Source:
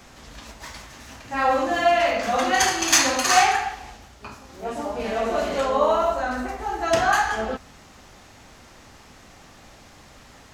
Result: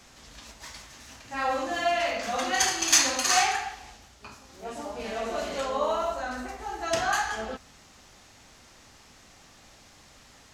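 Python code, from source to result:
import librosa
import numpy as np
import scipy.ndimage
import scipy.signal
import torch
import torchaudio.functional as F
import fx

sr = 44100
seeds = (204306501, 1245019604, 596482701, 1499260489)

y = fx.peak_eq(x, sr, hz=6300.0, db=6.5, octaves=2.6)
y = y * 10.0 ** (-8.0 / 20.0)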